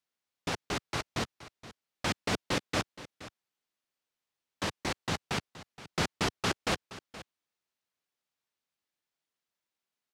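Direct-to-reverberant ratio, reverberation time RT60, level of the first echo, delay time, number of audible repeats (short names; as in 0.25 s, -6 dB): none, none, -16.0 dB, 0.472 s, 1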